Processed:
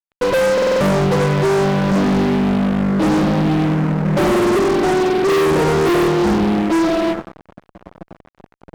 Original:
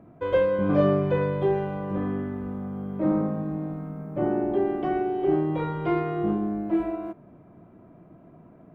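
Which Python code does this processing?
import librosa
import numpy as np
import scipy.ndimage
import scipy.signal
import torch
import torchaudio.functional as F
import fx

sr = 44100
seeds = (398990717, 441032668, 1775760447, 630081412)

y = scipy.signal.sosfilt(scipy.signal.butter(2, 1900.0, 'lowpass', fs=sr, output='sos'), x)
y = fx.low_shelf_res(y, sr, hz=120.0, db=-10.0, q=3.0)
y = fx.notch(y, sr, hz=640.0, q=20.0)
y = fx.comb_fb(y, sr, f0_hz=95.0, decay_s=0.88, harmonics='all', damping=0.0, mix_pct=70)
y = fx.echo_feedback(y, sr, ms=94, feedback_pct=42, wet_db=-7.5)
y = fx.rider(y, sr, range_db=3, speed_s=0.5)
y = fx.comb(y, sr, ms=5.5, depth=0.96, at=(4.05, 4.58))
y = fx.peak_eq(y, sr, hz=400.0, db=12.0, octaves=0.43, at=(5.29, 6.08))
y = y + 10.0 ** (-23.5 / 20.0) * np.pad(y, (int(80 * sr / 1000.0), 0))[:len(y)]
y = fx.fuzz(y, sr, gain_db=41.0, gate_db=-47.0)
y = fx.buffer_glitch(y, sr, at_s=(0.53,), block=2048, repeats=5)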